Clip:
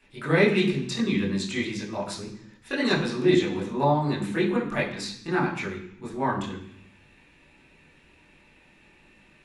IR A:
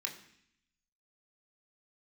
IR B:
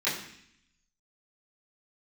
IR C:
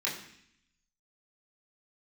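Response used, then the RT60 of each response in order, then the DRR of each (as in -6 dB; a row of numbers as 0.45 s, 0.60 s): C; 0.65 s, 0.65 s, 0.65 s; 1.0 dB, -13.0 dB, -6.5 dB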